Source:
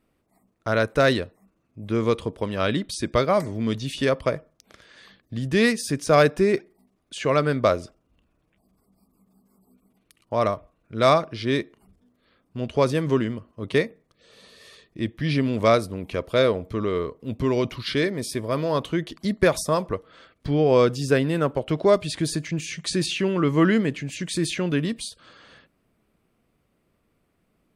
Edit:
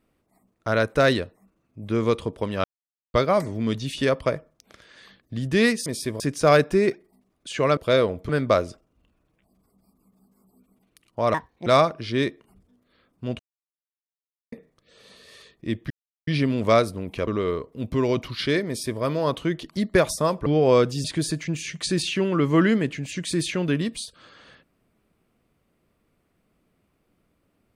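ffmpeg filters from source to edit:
-filter_complex "[0:a]asplit=15[a][b][c][d][e][f][g][h][i][j][k][l][m][n][o];[a]atrim=end=2.64,asetpts=PTS-STARTPTS,afade=t=out:st=2.636:d=0.004:c=hsin[p];[b]atrim=start=2.64:end=3.14,asetpts=PTS-STARTPTS,volume=0[q];[c]atrim=start=3.14:end=5.862,asetpts=PTS-STARTPTS,afade=t=in:d=0.004:c=hsin[r];[d]atrim=start=18.148:end=18.492[s];[e]atrim=start=5.858:end=7.432[t];[f]atrim=start=16.228:end=16.752[u];[g]atrim=start=7.428:end=10.484[v];[h]atrim=start=10.48:end=10.99,asetpts=PTS-STARTPTS,asetrate=69678,aresample=44100[w];[i]atrim=start=10.986:end=12.72,asetpts=PTS-STARTPTS,afade=t=out:st=1.73:d=0.004:c=hsin[x];[j]atrim=start=12.72:end=13.85,asetpts=PTS-STARTPTS,volume=0[y];[k]atrim=start=13.85:end=15.23,asetpts=PTS-STARTPTS,afade=t=in:d=0.004:c=hsin,afade=t=out:st=1.376:d=0.004:c=hsin,apad=pad_dur=0.37[z];[l]atrim=start=15.23:end=16.232,asetpts=PTS-STARTPTS,afade=t=in:d=0.004:c=hsin[aa];[m]atrim=start=16.748:end=19.942[ab];[n]atrim=start=20.498:end=21.082[ac];[o]atrim=start=22.078[ad];[p][q][r]concat=n=3:v=0:a=1[ae];[ae][s]acrossfade=d=0.004:c1=hsin:c2=hsin[af];[af][t]acrossfade=d=0.004:c1=hsin:c2=hsin[ag];[ag][u]acrossfade=d=0.004:c1=hsin:c2=hsin[ah];[ah][v]acrossfade=d=0.004:c1=hsin:c2=hsin[ai];[ai][w]acrossfade=d=0.004:c1=hsin:c2=hsin[aj];[x][y][z][aa]concat=n=4:v=0:a=1[ak];[aj][ak]acrossfade=d=0.004:c1=hsin:c2=hsin[al];[al][ab]acrossfade=d=0.004:c1=hsin:c2=hsin[am];[am][ac]acrossfade=d=0.004:c1=hsin:c2=hsin[an];[an][ad]acrossfade=d=0.004:c1=hsin:c2=hsin"

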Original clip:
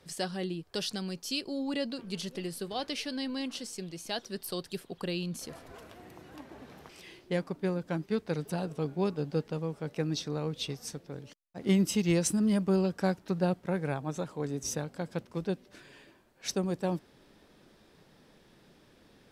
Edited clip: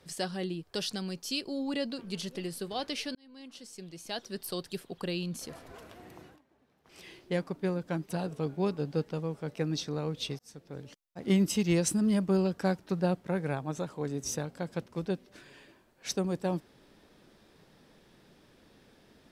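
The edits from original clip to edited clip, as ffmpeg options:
-filter_complex "[0:a]asplit=6[a][b][c][d][e][f];[a]atrim=end=3.15,asetpts=PTS-STARTPTS,afade=t=out:st=3.146:d=0.004:c=hsin[g];[b]atrim=start=3.15:end=6.39,asetpts=PTS-STARTPTS,afade=t=in:d=1.25,afade=t=out:st=3.09:d=0.15:silence=0.0944061[h];[c]atrim=start=6.39:end=6.84,asetpts=PTS-STARTPTS,volume=-20.5dB[i];[d]atrim=start=6.84:end=8.092,asetpts=PTS-STARTPTS,afade=t=in:d=0.15:silence=0.0944061[j];[e]atrim=start=8.478:end=10.78,asetpts=PTS-STARTPTS,afade=t=out:st=2.298:d=0.004:c=hsin[k];[f]atrim=start=10.78,asetpts=PTS-STARTPTS,afade=t=in:d=0.4[l];[g][h][i][j]concat=n=4:v=0:a=1[m];[k][l]concat=n=2:v=0:a=1[n];[m][n]acrossfade=d=0.004:c1=hsin:c2=hsin"

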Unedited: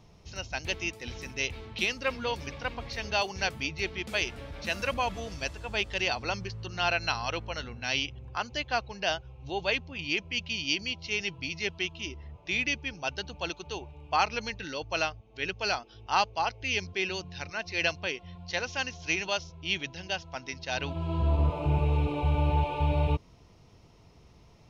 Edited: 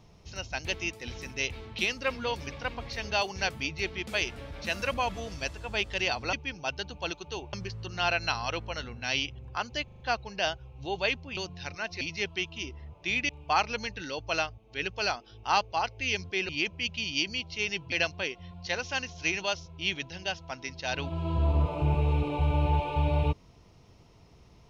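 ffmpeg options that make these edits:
-filter_complex "[0:a]asplit=12[a][b][c][d][e][f][g][h][i][j][k][l];[a]atrim=end=6.332[m];[b]atrim=start=12.718:end=13.922[n];[c]atrim=start=6.328:end=8.682[o];[d]atrim=start=8.638:end=8.682[p];[e]atrim=start=8.638:end=8.682[q];[f]atrim=start=8.638:end=8.682[r];[g]atrim=start=8.638:end=10.012[s];[h]atrim=start=17.118:end=17.762[t];[i]atrim=start=11.438:end=12.722[u];[j]atrim=start=13.918:end=17.122[v];[k]atrim=start=10.008:end=11.442[w];[l]atrim=start=17.758[x];[m][n]acrossfade=d=0.004:c1=hsin:c2=hsin[y];[y][o]acrossfade=d=0.004:c1=hsin:c2=hsin[z];[z][p]acrossfade=d=0.004:c1=hsin:c2=hsin[aa];[aa][q]acrossfade=d=0.004:c1=hsin:c2=hsin[ab];[ab][r]acrossfade=d=0.004:c1=hsin:c2=hsin[ac];[ac][s]acrossfade=d=0.004:c1=hsin:c2=hsin[ad];[ad][t]acrossfade=d=0.004:c1=hsin:c2=hsin[ae];[ae][u]acrossfade=d=0.004:c1=hsin:c2=hsin[af];[af][v]acrossfade=d=0.004:c1=hsin:c2=hsin[ag];[ag][w]acrossfade=d=0.004:c1=hsin:c2=hsin[ah];[ah][x]acrossfade=d=0.004:c1=hsin:c2=hsin"

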